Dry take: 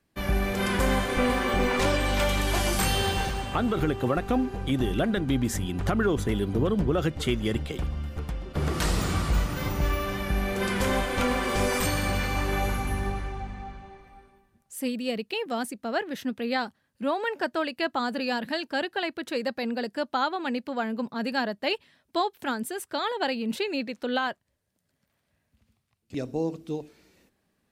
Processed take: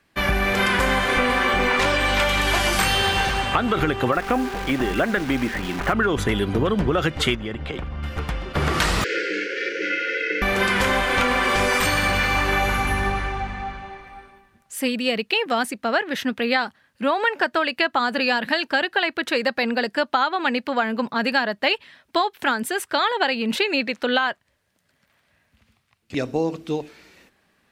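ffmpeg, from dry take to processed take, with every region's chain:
-filter_complex "[0:a]asettb=1/sr,asplit=3[a][b][c];[a]atrim=end=4.124[d];[b]atrim=start=4.12:end=5.93,asetpts=PTS-STARTPTS,afade=t=in:d=0.004:c=qsin,afade=t=out:st=1.806:d=0.004:c=qsin,lowpass=f=2.6k:w=0.5412,lowpass=f=2.6k:w=1.3066,equalizer=f=92:t=o:w=1.2:g=-13,acrusher=bits=8:dc=4:mix=0:aa=0.000001[e];[c]atrim=start=5.926[f];[d][e]acrossfade=d=0.004:c1=hsin:c2=qsin[g];[g][f]acrossfade=d=0.004:c1=qsin:c2=hsin,asettb=1/sr,asplit=3[h][i][j];[h]atrim=end=7.354[k];[i]atrim=start=7.35:end=8.03,asetpts=PTS-STARTPTS,afade=t=in:d=0.004:c=qsin,afade=t=out:st=0.676:d=0.004:c=qsin,lowpass=f=1.8k:p=1,acompressor=threshold=-31dB:ratio=10:attack=3.2:release=140:knee=1:detection=peak[l];[j]atrim=start=8.026[m];[k][l]acrossfade=d=0.004:c1=hsin:c2=qsin[n];[n][m]acrossfade=d=0.004:c1=qsin:c2=hsin,asettb=1/sr,asplit=3[o][p][q];[o]atrim=end=9.044[r];[p]atrim=start=9.04:end=10.42,asetpts=PTS-STARTPTS,afade=t=in:d=0.004:c=qsin,afade=t=out:st=1.376:d=0.004:c=qsin,aeval=exprs='val(0)*sin(2*PI*250*n/s)':c=same,asuperstop=centerf=870:order=20:qfactor=1,highpass=f=410:w=0.5412,highpass=f=410:w=1.3066,equalizer=f=490:t=q:w=4:g=5,equalizer=f=730:t=q:w=4:g=10,equalizer=f=1.1k:t=q:w=4:g=-7,equalizer=f=2.1k:t=q:w=4:g=4,equalizer=f=3.7k:t=q:w=4:g=-8,lowpass=f=5.3k:w=0.5412,lowpass=f=5.3k:w=1.3066[s];[q]atrim=start=10.416[t];[r][s]acrossfade=d=0.004:c1=hsin:c2=qsin[u];[u][t]acrossfade=d=0.004:c1=qsin:c2=hsin,equalizer=f=1.9k:t=o:w=3:g=10,acompressor=threshold=-21dB:ratio=6,volume=4.5dB"

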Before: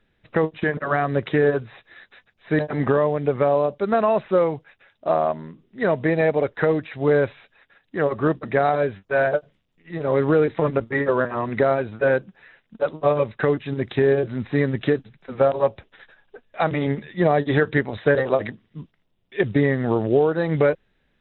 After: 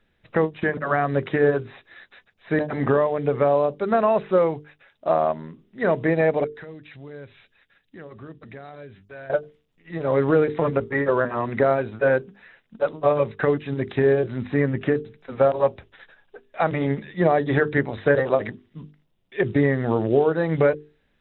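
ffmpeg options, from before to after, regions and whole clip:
-filter_complex "[0:a]asettb=1/sr,asplit=3[a][b][c];[a]atrim=end=6.444[d];[b]atrim=start=6.44:end=9.3,asetpts=PTS-STARTPTS,afade=t=in:d=0.004:c=qsin,afade=t=out:st=2.856:d=0.004:c=qsin,equalizer=f=780:t=o:w=2.5:g=-9.5,acompressor=threshold=-42dB:ratio=2.5:attack=3.2:release=140:knee=1:detection=peak[e];[c]atrim=start=9.296[f];[d][e]acrossfade=d=0.004:c1=hsin:c2=qsin[g];[g][f]acrossfade=d=0.004:c1=qsin:c2=hsin,asettb=1/sr,asplit=3[h][i][j];[h]atrim=end=14.544[k];[i]atrim=start=14.54:end=14.96,asetpts=PTS-STARTPTS,afade=t=in:d=0.004:c=qsin,afade=t=out:st=0.416:d=0.004:c=qsin,lowpass=f=3k:w=0.5412,lowpass=f=3k:w=1.3066,acompressor=mode=upward:threshold=-28dB:ratio=2.5:attack=3.2:release=140:knee=2.83:detection=peak[l];[j]atrim=start=14.956[m];[k][l]acrossfade=d=0.004:c1=hsin:c2=qsin[n];[n][m]acrossfade=d=0.004:c1=qsin:c2=hsin,acrossover=split=2900[o][p];[p]acompressor=threshold=-49dB:ratio=4:attack=1:release=60[q];[o][q]amix=inputs=2:normalize=0,bandreject=f=50:t=h:w=6,bandreject=f=100:t=h:w=6,bandreject=f=150:t=h:w=6,bandreject=f=200:t=h:w=6,bandreject=f=250:t=h:w=6,bandreject=f=300:t=h:w=6,bandreject=f=350:t=h:w=6,bandreject=f=400:t=h:w=6,bandreject=f=450:t=h:w=6"

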